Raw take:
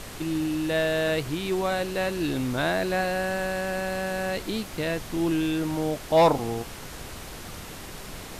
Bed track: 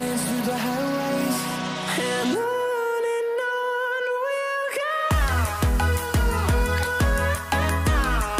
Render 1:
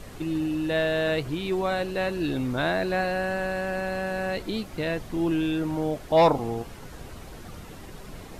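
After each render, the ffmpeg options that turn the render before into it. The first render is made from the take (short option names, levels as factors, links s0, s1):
-af "afftdn=nr=9:nf=-40"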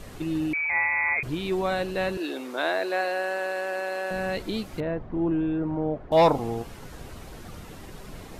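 -filter_complex "[0:a]asettb=1/sr,asplit=3[s0][s1][s2];[s0]atrim=end=0.534[s3];[s1]atrim=start=0.53:end=1.23,asetpts=PTS-STARTPTS,afade=t=in:d=0.004:c=qsin,afade=t=out:st=0.696:d=0.004:c=qsin,lowpass=f=2200:t=q:w=0.5098,lowpass=f=2200:t=q:w=0.6013,lowpass=f=2200:t=q:w=0.9,lowpass=f=2200:t=q:w=2.563,afreqshift=-2600[s4];[s2]atrim=start=1.226[s5];[s3][s4]acrossfade=d=0.004:c1=hsin:c2=qsin[s6];[s6][s5]acrossfade=d=0.004:c1=qsin:c2=hsin,asettb=1/sr,asplit=3[s7][s8][s9];[s7]atrim=end=2.174[s10];[s8]atrim=start=2.17:end=4.11,asetpts=PTS-STARTPTS,afade=t=in:d=0.004:c=qsin,afade=t=out:st=1.936:d=0.004:c=qsin,highpass=f=330:w=0.5412,highpass=f=330:w=1.3066[s11];[s9]atrim=start=4.106[s12];[s10][s11]acrossfade=d=0.004:c1=hsin:c2=qsin[s13];[s13][s12]acrossfade=d=0.004:c1=qsin:c2=hsin,asettb=1/sr,asplit=3[s14][s15][s16];[s14]atrim=end=4.804[s17];[s15]atrim=start=4.8:end=6.12,asetpts=PTS-STARTPTS,afade=t=in:d=0.004:c=qsin,afade=t=out:st=1.316:d=0.004:c=qsin,lowpass=1200[s18];[s16]atrim=start=6.116[s19];[s17][s18]acrossfade=d=0.004:c1=hsin:c2=qsin[s20];[s20][s19]acrossfade=d=0.004:c1=qsin:c2=hsin"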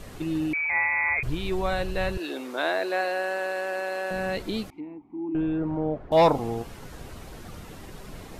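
-filter_complex "[0:a]asplit=3[s0][s1][s2];[s0]afade=t=out:st=1.09:d=0.02[s3];[s1]asubboost=boost=10:cutoff=93,afade=t=in:st=1.09:d=0.02,afade=t=out:st=2.29:d=0.02[s4];[s2]afade=t=in:st=2.29:d=0.02[s5];[s3][s4][s5]amix=inputs=3:normalize=0,asettb=1/sr,asplit=3[s6][s7][s8];[s6]atrim=end=4.704[s9];[s7]atrim=start=4.7:end=5.35,asetpts=PTS-STARTPTS,afade=t=in:d=0.004:c=qsin,afade=t=out:st=0.646:d=0.004:c=qsin,asplit=3[s10][s11][s12];[s10]bandpass=f=300:t=q:w=8,volume=1[s13];[s11]bandpass=f=870:t=q:w=8,volume=0.501[s14];[s12]bandpass=f=2240:t=q:w=8,volume=0.355[s15];[s13][s14][s15]amix=inputs=3:normalize=0[s16];[s8]atrim=start=5.346[s17];[s9][s16]acrossfade=d=0.004:c1=hsin:c2=qsin[s18];[s18][s17]acrossfade=d=0.004:c1=qsin:c2=hsin"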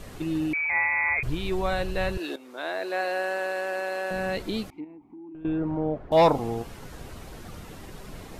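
-filter_complex "[0:a]asettb=1/sr,asplit=3[s0][s1][s2];[s0]atrim=end=4.844[s3];[s1]atrim=start=4.84:end=5.45,asetpts=PTS-STARTPTS,afade=t=in:d=0.004:c=qsin,afade=t=out:st=0.606:d=0.004:c=qsin,acompressor=threshold=0.00708:ratio=4:attack=3.2:release=140:knee=1:detection=peak[s4];[s2]atrim=start=5.446[s5];[s3][s4]acrossfade=d=0.004:c1=hsin:c2=qsin[s6];[s6][s5]acrossfade=d=0.004:c1=qsin:c2=hsin,asplit=2[s7][s8];[s7]atrim=end=2.36,asetpts=PTS-STARTPTS,afade=t=out:st=2.356:d=0.004:c=hsin:silence=0.188365[s9];[s8]atrim=start=2.36,asetpts=PTS-STARTPTS,afade=t=in:d=0.8:silence=0.188365[s10];[s9][s10]concat=n=2:v=0:a=1"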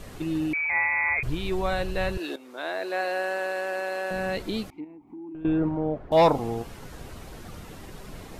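-filter_complex "[0:a]asplit=3[s0][s1][s2];[s0]atrim=end=5.072[s3];[s1]atrim=start=5.068:end=5.692,asetpts=PTS-STARTPTS,volume=1.5[s4];[s2]atrim=start=5.688[s5];[s3][s4]acrossfade=d=0.004:c1=hsin:c2=hsin[s6];[s6][s5]acrossfade=d=0.004:c1=hsin:c2=hsin"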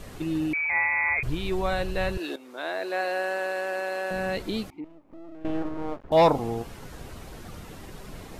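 -filter_complex "[0:a]asettb=1/sr,asplit=3[s0][s1][s2];[s0]atrim=end=4.844[s3];[s1]atrim=start=4.84:end=6.1,asetpts=PTS-STARTPTS,afade=t=in:d=0.004:c=qsin,afade=t=out:st=1.256:d=0.004:c=qsin,aeval=exprs='max(val(0),0)':c=same[s4];[s2]atrim=start=6.096[s5];[s3][s4]acrossfade=d=0.004:c1=hsin:c2=qsin[s6];[s6][s5]acrossfade=d=0.004:c1=qsin:c2=hsin"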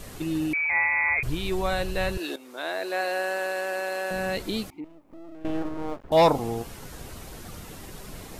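-af "highshelf=f=5100:g=8.5"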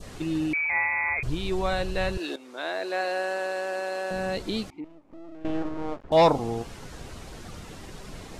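-af "lowpass=7400,adynamicequalizer=threshold=0.0126:dfrequency=2100:dqfactor=1.2:tfrequency=2100:tqfactor=1.2:attack=5:release=100:ratio=0.375:range=2.5:mode=cutabove:tftype=bell"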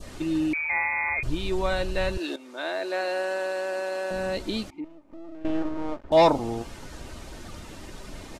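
-af "aecho=1:1:3.3:0.32"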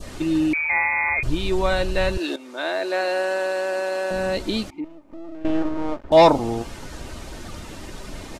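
-af "volume=1.78"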